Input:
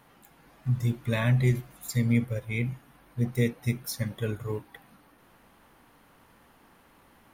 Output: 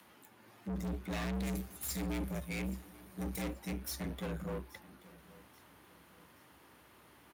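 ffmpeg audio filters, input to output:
-filter_complex "[0:a]asettb=1/sr,asplit=3[s0][s1][s2];[s0]atrim=end=1.334[s3];[s1]atrim=start=1.33:end=3.42,asetpts=PTS-STARTPTS,afade=t=in:d=0.004:c=qsin,afade=t=out:st=2.086:d=0.004:c=qsin,bass=f=250:g=0,treble=f=4000:g=9[s4];[s2]atrim=start=3.416[s5];[s3][s4]acrossfade=d=0.004:c1=hsin:c2=qsin[s6];[s6][s5]acrossfade=d=0.004:c1=qsin:c2=hsin,acrossover=split=120|2100[s7][s8][s9];[s9]acompressor=mode=upward:threshold=0.00126:ratio=2.5[s10];[s7][s8][s10]amix=inputs=3:normalize=0,aeval=exprs='(tanh(63.1*val(0)+0.65)-tanh(0.65))/63.1':c=same,afreqshift=63,aecho=1:1:831|1662|2493:0.0944|0.0406|0.0175"

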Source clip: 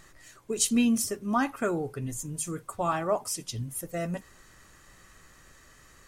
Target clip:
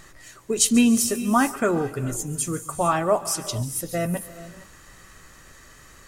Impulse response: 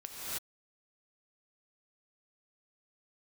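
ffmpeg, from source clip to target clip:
-filter_complex "[0:a]asplit=2[s0][s1];[s1]highshelf=f=7300:g=12[s2];[1:a]atrim=start_sample=2205,adelay=141[s3];[s2][s3]afir=irnorm=-1:irlink=0,volume=0.141[s4];[s0][s4]amix=inputs=2:normalize=0,volume=2.11"

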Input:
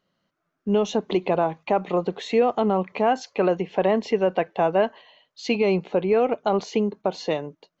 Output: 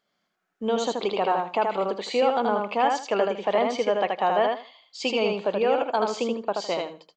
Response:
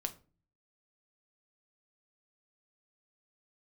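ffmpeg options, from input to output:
-af "lowshelf=f=310:g=-11,aecho=1:1:86|172|258:0.668|0.134|0.0267,asetrate=48000,aresample=44100"

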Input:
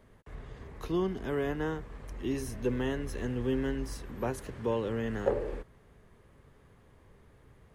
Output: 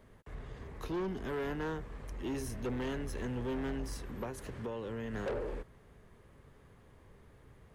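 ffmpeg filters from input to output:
-filter_complex "[0:a]asettb=1/sr,asplit=3[s0][s1][s2];[s0]atrim=end=4.234[s3];[s1]atrim=start=4.23:end=5.14,asetpts=PTS-STARTPTS,afade=t=in:d=0.004:c=qsin,afade=t=out:st=0.906:d=0.004:c=qsin,acompressor=threshold=0.02:ratio=6[s4];[s2]atrim=start=5.136[s5];[s3][s4]acrossfade=d=0.004:c1=hsin:c2=qsin[s6];[s6][s5]acrossfade=d=0.004:c1=qsin:c2=hsin,asoftclip=type=tanh:threshold=0.0251"

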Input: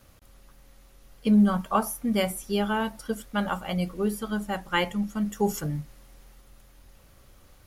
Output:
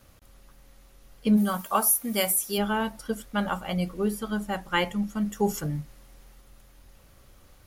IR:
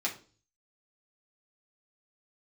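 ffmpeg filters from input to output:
-filter_complex "[0:a]asplit=3[s0][s1][s2];[s0]afade=t=out:st=1.36:d=0.02[s3];[s1]aemphasis=mode=production:type=bsi,afade=t=in:st=1.36:d=0.02,afade=t=out:st=2.57:d=0.02[s4];[s2]afade=t=in:st=2.57:d=0.02[s5];[s3][s4][s5]amix=inputs=3:normalize=0"

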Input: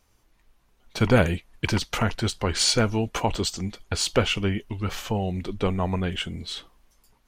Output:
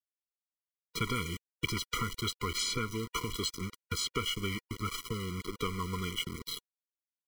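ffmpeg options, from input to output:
-filter_complex "[0:a]aeval=exprs='val(0)*gte(abs(val(0)),0.0299)':c=same,acrossover=split=780|3500[s0][s1][s2];[s0]acompressor=threshold=0.0158:ratio=4[s3];[s1]acompressor=threshold=0.0251:ratio=4[s4];[s2]acompressor=threshold=0.0224:ratio=4[s5];[s3][s4][s5]amix=inputs=3:normalize=0,afftfilt=real='re*eq(mod(floor(b*sr/1024/480),2),0)':imag='im*eq(mod(floor(b*sr/1024/480),2),0)':win_size=1024:overlap=0.75"

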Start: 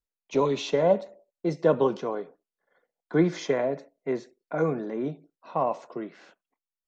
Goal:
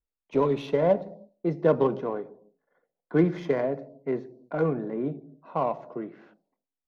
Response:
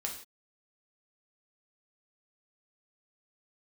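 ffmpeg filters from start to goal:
-filter_complex "[0:a]adynamicsmooth=sensitivity=1.5:basefreq=2000,asplit=2[s0][s1];[s1]asuperstop=centerf=1900:order=8:qfactor=0.57[s2];[1:a]atrim=start_sample=2205,asetrate=25137,aresample=44100,lowshelf=f=220:g=10.5[s3];[s2][s3]afir=irnorm=-1:irlink=0,volume=0.119[s4];[s0][s4]amix=inputs=2:normalize=0"

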